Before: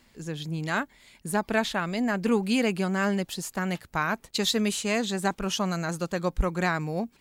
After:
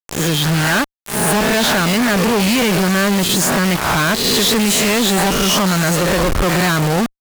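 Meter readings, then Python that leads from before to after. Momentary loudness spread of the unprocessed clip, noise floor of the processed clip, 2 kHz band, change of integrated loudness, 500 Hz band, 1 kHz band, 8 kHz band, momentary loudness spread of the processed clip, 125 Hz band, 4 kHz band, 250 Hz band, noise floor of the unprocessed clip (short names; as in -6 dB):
7 LU, -67 dBFS, +13.0 dB, +13.0 dB, +11.5 dB, +12.0 dB, +18.0 dB, 3 LU, +14.0 dB, +16.0 dB, +11.5 dB, -62 dBFS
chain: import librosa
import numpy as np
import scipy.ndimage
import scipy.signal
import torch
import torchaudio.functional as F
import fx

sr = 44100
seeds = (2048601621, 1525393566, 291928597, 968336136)

y = fx.spec_swells(x, sr, rise_s=0.67)
y = fx.quant_dither(y, sr, seeds[0], bits=6, dither='none')
y = fx.fuzz(y, sr, gain_db=43.0, gate_db=-49.0)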